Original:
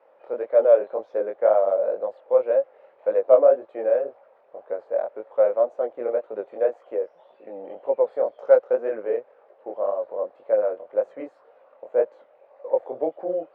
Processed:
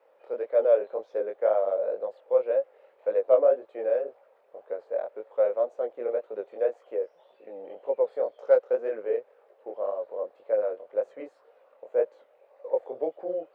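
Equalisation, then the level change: peaking EQ 440 Hz +6 dB 0.61 oct; treble shelf 2.2 kHz +12 dB; -8.5 dB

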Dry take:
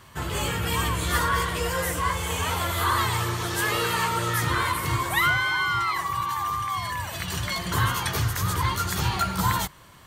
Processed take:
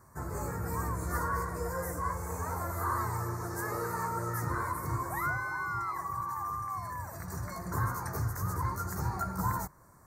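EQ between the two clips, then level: dynamic bell 9.2 kHz, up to -5 dB, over -46 dBFS, Q 0.99; Butterworth band-stop 3.1 kHz, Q 0.63; -7.0 dB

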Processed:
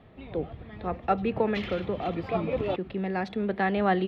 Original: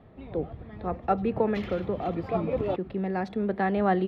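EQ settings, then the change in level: peaking EQ 3 kHz +8 dB 1.6 oct; -1.0 dB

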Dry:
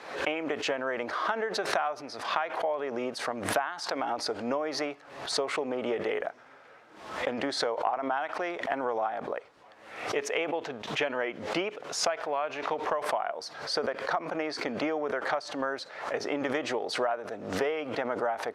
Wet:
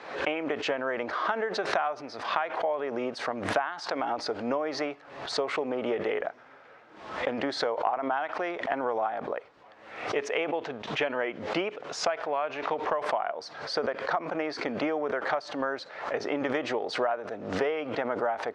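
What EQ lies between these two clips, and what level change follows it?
distance through air 99 m; +1.5 dB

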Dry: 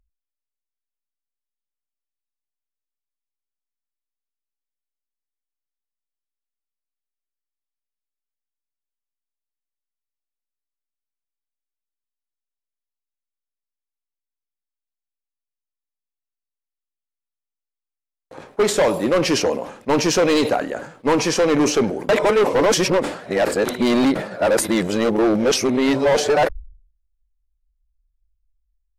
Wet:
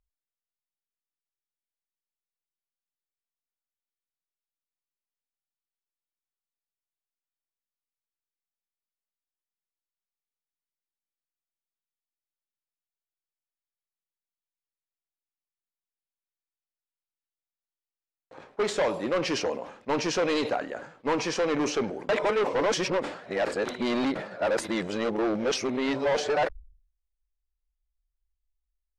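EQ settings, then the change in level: distance through air 84 m; bass shelf 470 Hz -6 dB; -6.0 dB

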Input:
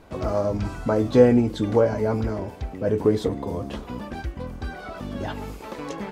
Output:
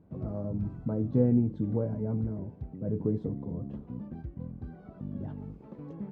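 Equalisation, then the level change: band-pass filter 150 Hz, Q 1.8; 0.0 dB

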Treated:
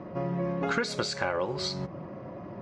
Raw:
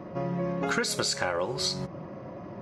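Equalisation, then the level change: distance through air 110 m; 0.0 dB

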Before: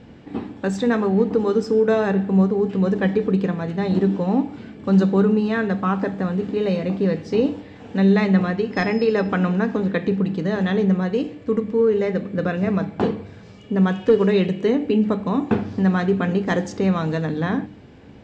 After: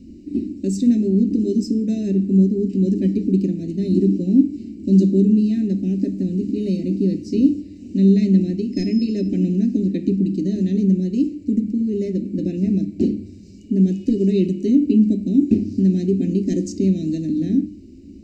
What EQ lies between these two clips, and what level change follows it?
elliptic band-stop 370–3300 Hz, stop band 80 dB; static phaser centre 680 Hz, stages 8; +8.0 dB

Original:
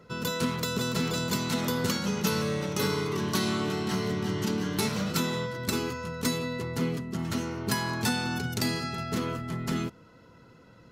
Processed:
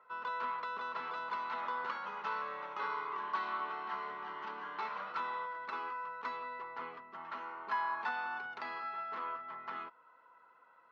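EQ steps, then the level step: ladder band-pass 1.2 kHz, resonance 50%; distance through air 220 m; +7.5 dB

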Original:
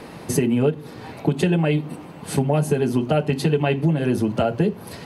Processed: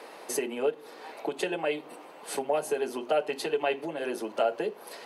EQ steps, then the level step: ladder high-pass 360 Hz, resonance 20%; 0.0 dB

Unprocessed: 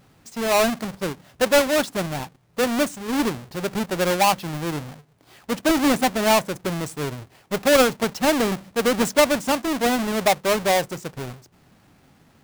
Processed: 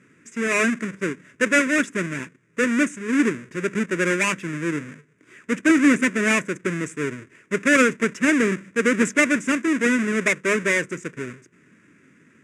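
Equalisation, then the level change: cabinet simulation 280–7200 Hz, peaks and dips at 550 Hz -6 dB, 820 Hz -10 dB, 1.2 kHz -8 dB, 3.1 kHz -10 dB, 5.4 kHz -7 dB; peaking EQ 890 Hz -4 dB 0.29 oct; static phaser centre 1.8 kHz, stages 4; +9.0 dB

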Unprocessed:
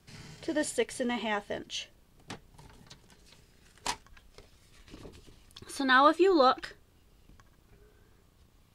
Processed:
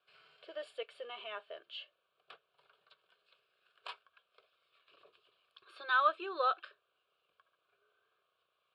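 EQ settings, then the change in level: band-pass 750–2900 Hz; static phaser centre 1.3 kHz, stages 8; -3.5 dB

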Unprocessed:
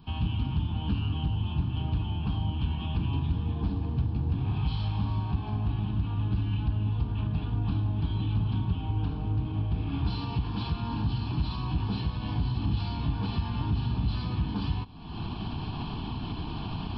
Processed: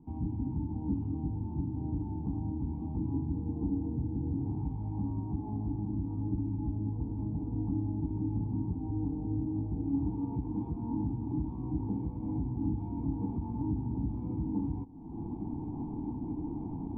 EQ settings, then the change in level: cascade formant filter u; peaking EQ 490 Hz +6 dB 0.24 oct; +7.0 dB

